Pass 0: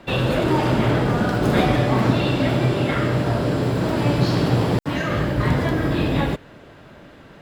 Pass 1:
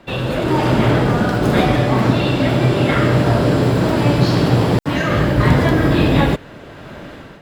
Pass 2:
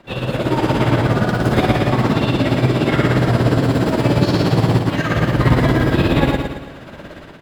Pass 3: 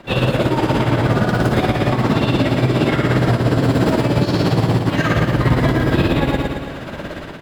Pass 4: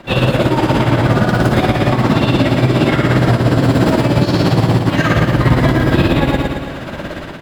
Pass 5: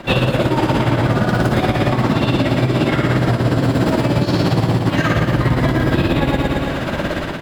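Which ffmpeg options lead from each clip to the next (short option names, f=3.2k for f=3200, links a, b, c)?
-af "dynaudnorm=f=210:g=5:m=14.5dB,volume=-1dB"
-filter_complex "[0:a]tremolo=f=17:d=0.6,asplit=2[a][b];[b]aecho=0:1:111|222|333|444|555|666:0.596|0.292|0.143|0.0701|0.0343|0.0168[c];[a][c]amix=inputs=2:normalize=0"
-af "alimiter=limit=-12dB:level=0:latency=1:release=495,volume=6.5dB"
-af "bandreject=f=440:w=12,volume=3.5dB"
-af "acompressor=threshold=-17dB:ratio=6,volume=4.5dB"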